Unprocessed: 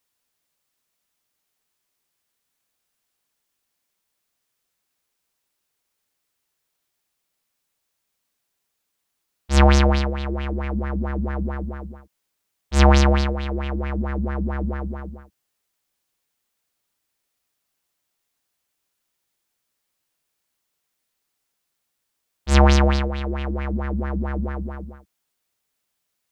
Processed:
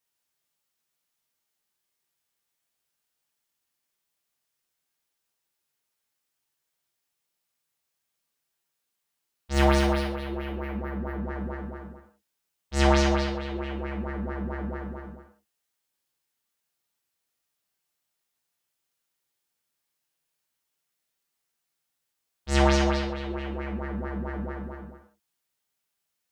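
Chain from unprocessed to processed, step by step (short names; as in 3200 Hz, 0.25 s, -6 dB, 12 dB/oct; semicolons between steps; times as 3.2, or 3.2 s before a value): low shelf 210 Hz -3 dB; non-linear reverb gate 0.17 s falling, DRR -0.5 dB; 9.53–11.28 decimation joined by straight lines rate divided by 3×; gain -7.5 dB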